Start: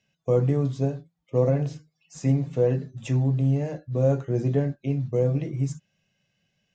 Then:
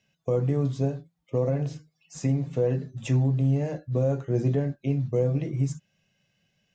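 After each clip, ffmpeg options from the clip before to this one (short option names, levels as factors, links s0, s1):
-af "alimiter=limit=0.15:level=0:latency=1:release=364,volume=1.19"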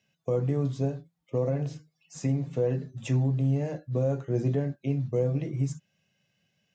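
-af "highpass=76,volume=0.794"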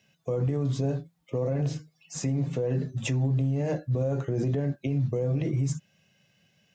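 -af "alimiter=level_in=1.5:limit=0.0631:level=0:latency=1:release=48,volume=0.668,volume=2.37"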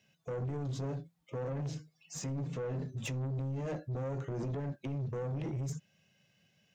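-af "asoftclip=type=tanh:threshold=0.0376,volume=0.596"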